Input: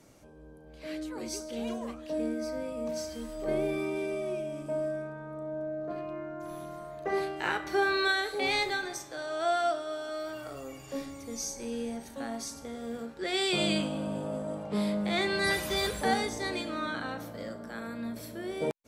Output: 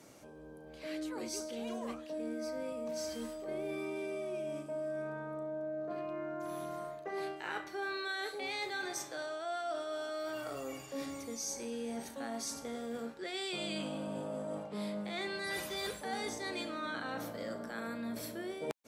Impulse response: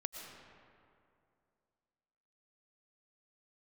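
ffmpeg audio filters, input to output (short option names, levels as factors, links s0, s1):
-af "highpass=f=200:p=1,areverse,acompressor=threshold=0.0112:ratio=6,areverse,volume=1.33"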